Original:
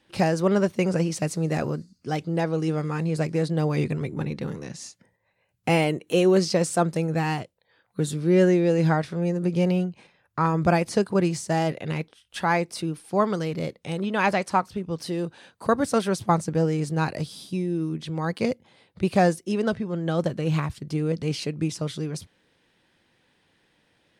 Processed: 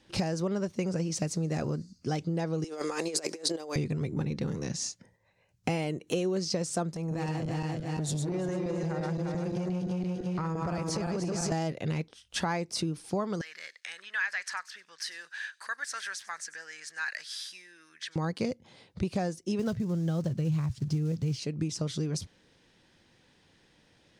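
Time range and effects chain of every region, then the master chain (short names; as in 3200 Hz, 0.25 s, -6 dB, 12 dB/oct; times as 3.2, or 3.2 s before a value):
2.64–3.76 HPF 340 Hz 24 dB/oct + high shelf 5700 Hz +10.5 dB + negative-ratio compressor -34 dBFS, ratio -0.5
6.94–11.52 regenerating reverse delay 0.172 s, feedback 60%, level -2 dB + compressor 5:1, threshold -28 dBFS + core saturation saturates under 420 Hz
13.41–18.16 compressor 2:1, threshold -40 dBFS + resonant high-pass 1700 Hz, resonance Q 7.7 + thin delay 96 ms, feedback 31%, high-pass 4900 Hz, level -16 dB
19.59–21.39 block floating point 5-bit + bell 120 Hz +13.5 dB 0.99 oct
whole clip: tilt -1.5 dB/oct; compressor 6:1, threshold -28 dBFS; bell 6000 Hz +11 dB 1.2 oct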